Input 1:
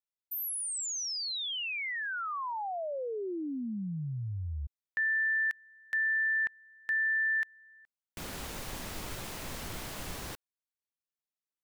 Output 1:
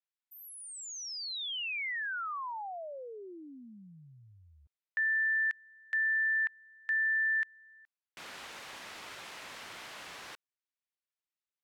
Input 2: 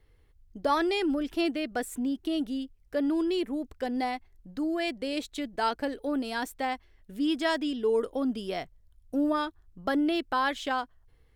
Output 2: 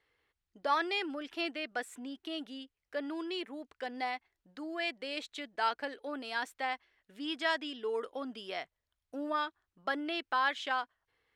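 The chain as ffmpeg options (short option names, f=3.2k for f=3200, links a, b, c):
-af "acontrast=90,bandpass=f=2k:t=q:w=0.61:csg=0,volume=-7.5dB"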